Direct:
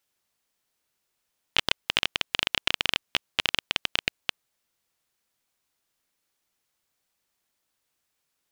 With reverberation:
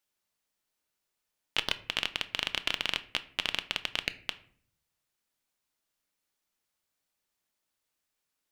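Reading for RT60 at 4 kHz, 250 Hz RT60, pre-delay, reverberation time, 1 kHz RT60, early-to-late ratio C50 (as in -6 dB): 0.35 s, 0.80 s, 3 ms, 0.50 s, 0.45 s, 17.0 dB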